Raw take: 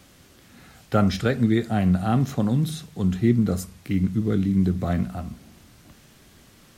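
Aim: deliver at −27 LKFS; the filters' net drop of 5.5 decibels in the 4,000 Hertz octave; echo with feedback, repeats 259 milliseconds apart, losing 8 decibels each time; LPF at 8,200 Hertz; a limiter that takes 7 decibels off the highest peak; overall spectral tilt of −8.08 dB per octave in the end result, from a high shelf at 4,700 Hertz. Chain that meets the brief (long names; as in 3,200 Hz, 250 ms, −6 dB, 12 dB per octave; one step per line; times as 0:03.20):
low-pass filter 8,200 Hz
parametric band 4,000 Hz −3.5 dB
high-shelf EQ 4,700 Hz −6.5 dB
brickwall limiter −14.5 dBFS
repeating echo 259 ms, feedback 40%, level −8 dB
level −2 dB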